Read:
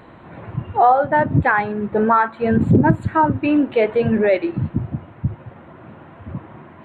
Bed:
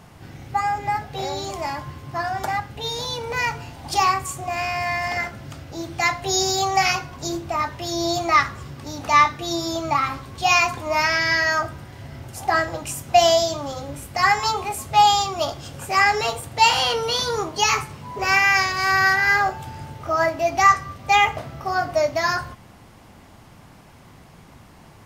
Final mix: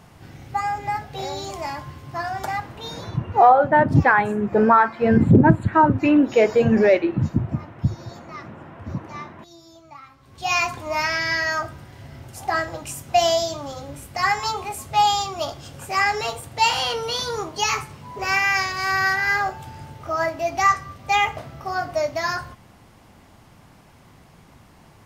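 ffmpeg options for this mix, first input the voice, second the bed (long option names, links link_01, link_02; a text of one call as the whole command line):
ffmpeg -i stem1.wav -i stem2.wav -filter_complex "[0:a]adelay=2600,volume=0.5dB[link_01];[1:a]volume=17dB,afade=type=out:start_time=2.64:duration=0.48:silence=0.1,afade=type=in:start_time=10.17:duration=0.44:silence=0.112202[link_02];[link_01][link_02]amix=inputs=2:normalize=0" out.wav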